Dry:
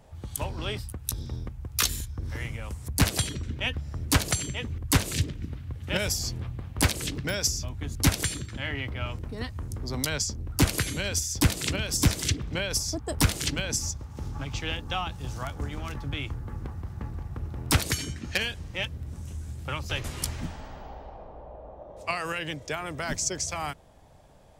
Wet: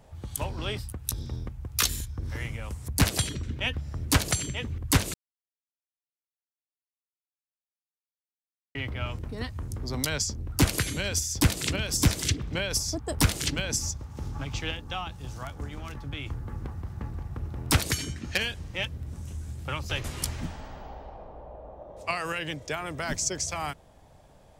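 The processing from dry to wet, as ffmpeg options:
-filter_complex "[0:a]asplit=5[a][b][c][d][e];[a]atrim=end=5.14,asetpts=PTS-STARTPTS,afade=t=out:st=5.136:d=0.004:c=hsin[f];[b]atrim=start=5.14:end=8.75,asetpts=PTS-STARTPTS,volume=0[g];[c]atrim=start=8.75:end=14.712,asetpts=PTS-STARTPTS,afade=t=in:d=0.004:c=hsin[h];[d]atrim=start=14.708:end=16.262,asetpts=PTS-STARTPTS,volume=-3.5dB[i];[e]atrim=start=16.258[j];[f][g][h]concat=n=3:v=0:a=1[k];[k][i]acrossfade=d=0.004:c1=hsin:c2=hsin[l];[l][j]acrossfade=d=0.004:c1=hsin:c2=hsin"

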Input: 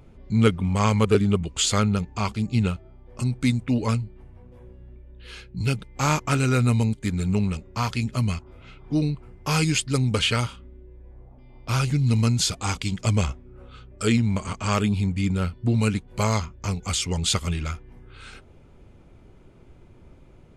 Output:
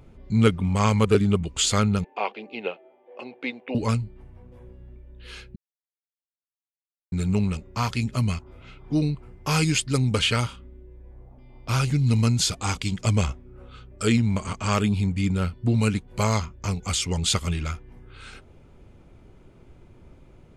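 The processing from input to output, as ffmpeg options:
-filter_complex "[0:a]asettb=1/sr,asplit=3[a][b][c];[a]atrim=end=2.044[d];[b]atrim=start=2.04:end=3.75,asetpts=PTS-STARTPTS,afade=t=in:d=0.004:c=qsin,afade=t=out:st=1.706:d=0.004:c=qsin,highpass=f=350:w=0.5412,highpass=f=350:w=1.3066,equalizer=f=510:t=q:w=4:g=8,equalizer=f=760:t=q:w=4:g=7,equalizer=f=1.3k:t=q:w=4:g=-8,equalizer=f=2.7k:t=q:w=4:g=4,lowpass=f=3.1k:w=0.5412,lowpass=f=3.1k:w=1.3066[e];[c]atrim=start=3.746[f];[d][e]acrossfade=d=0.004:c1=hsin:c2=qsin[g];[g][f]acrossfade=d=0.004:c1=qsin:c2=hsin,asplit=3[h][i][j];[h]atrim=end=5.56,asetpts=PTS-STARTPTS,afade=t=out:st=5.556:d=0.004:c=hsin[k];[i]atrim=start=5.56:end=7.12,asetpts=PTS-STARTPTS,volume=0[l];[j]atrim=start=7.12,asetpts=PTS-STARTPTS,afade=t=in:d=0.004:c=hsin[m];[k][l][m]concat=n=3:v=0:a=1"

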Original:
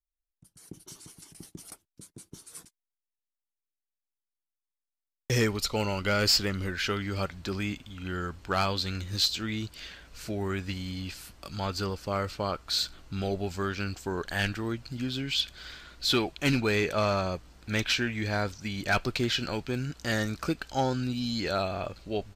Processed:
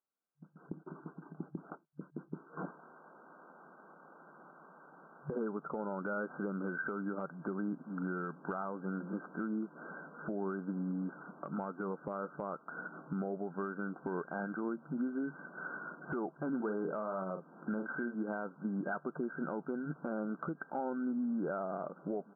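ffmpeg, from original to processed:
-filter_complex "[0:a]asettb=1/sr,asplit=3[a][b][c];[a]atrim=end=2.574[d];[b]atrim=start=2.57:end=5.35,asetpts=PTS-STARTPTS,afade=t=in:d=0.004:c=qsin,afade=t=out:st=2.776:d=0.004:c=qsin,aeval=exprs='val(0)+0.5*0.0141*sgn(val(0))':c=same[e];[c]atrim=start=5.346[f];[d][e]acrossfade=d=0.004:c1=hsin:c2=qsin[g];[g][f]acrossfade=d=0.004:c1=qsin:c2=hsin,asettb=1/sr,asplit=3[h][i][j];[h]atrim=end=16.564[k];[i]atrim=start=16.56:end=18.15,asetpts=PTS-STARTPTS,afade=t=in:d=0.004:c=qsin,afade=t=out:st=1.586:d=0.004:c=qsin,asplit=2[l][m];[m]adelay=42,volume=-8dB[n];[l][n]amix=inputs=2:normalize=0,atrim=end_sample=70119[o];[j]atrim=start=18.146[p];[k][o]acrossfade=d=0.004:c1=hsin:c2=qsin[q];[q][p]acrossfade=d=0.004:c1=qsin:c2=hsin,afftfilt=real='re*between(b*sr/4096,140,1600)':imag='im*between(b*sr/4096,140,1600)':win_size=4096:overlap=0.75,acompressor=threshold=-42dB:ratio=4,alimiter=level_in=11dB:limit=-24dB:level=0:latency=1:release=90,volume=-11dB,volume=7.5dB"

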